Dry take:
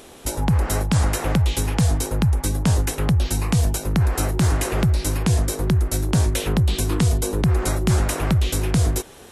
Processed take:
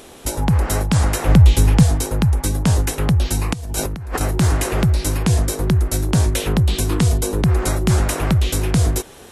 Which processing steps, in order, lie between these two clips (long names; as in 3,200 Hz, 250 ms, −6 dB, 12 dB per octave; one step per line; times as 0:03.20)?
0:01.28–0:01.83: low-shelf EQ 230 Hz +8.5 dB
0:03.53–0:04.21: compressor whose output falls as the input rises −28 dBFS, ratio −1
level +2.5 dB